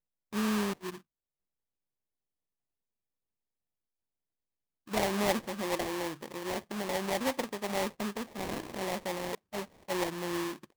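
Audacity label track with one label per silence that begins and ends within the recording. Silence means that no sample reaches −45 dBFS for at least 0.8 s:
0.980000	4.870000	silence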